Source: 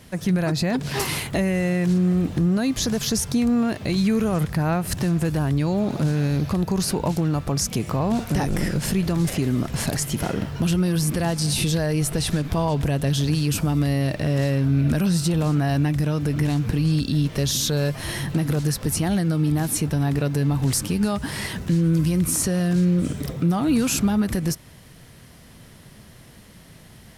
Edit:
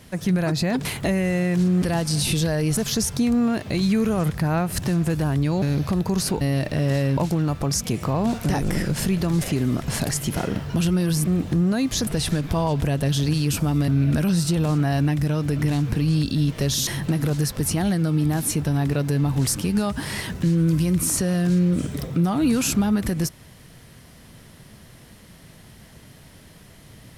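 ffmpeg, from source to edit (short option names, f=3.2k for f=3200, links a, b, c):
-filter_complex "[0:a]asplit=11[a][b][c][d][e][f][g][h][i][j][k];[a]atrim=end=0.852[l];[b]atrim=start=1.148:end=2.122[m];[c]atrim=start=11.128:end=12.082[n];[d]atrim=start=2.918:end=5.772[o];[e]atrim=start=6.238:end=7.032[p];[f]atrim=start=13.888:end=14.652[q];[g]atrim=start=7.028:end=11.132[r];[h]atrim=start=2.118:end=2.922[s];[i]atrim=start=12.078:end=13.892[t];[j]atrim=start=14.648:end=17.642[u];[k]atrim=start=18.128[v];[l][m]acrossfade=d=0.004:c1=hsin:c2=hsin[w];[w][n]acrossfade=d=0.004:c1=hsin:c2=hsin[x];[x][o]acrossfade=d=0.004:c1=hsin:c2=hsin[y];[y][p]acrossfade=d=0.004:c1=hsin:c2=hsin[z];[z][q]acrossfade=d=0.004:c1=hsin:c2=hsin[aa];[aa][r]acrossfade=d=0.004:c1=hsin:c2=hsin[ab];[ab][s]acrossfade=d=0.004:c1=hsin:c2=hsin[ac];[ac][t]acrossfade=d=0.004:c1=hsin:c2=hsin[ad];[ad][u]acrossfade=d=0.004:c1=hsin:c2=hsin[ae];[ae][v]acrossfade=d=0.004:c1=hsin:c2=hsin"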